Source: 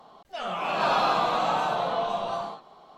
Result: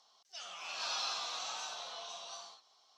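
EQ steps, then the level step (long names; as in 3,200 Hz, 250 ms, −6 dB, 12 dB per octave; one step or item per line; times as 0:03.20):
resonant band-pass 5,700 Hz, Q 4.4
+8.5 dB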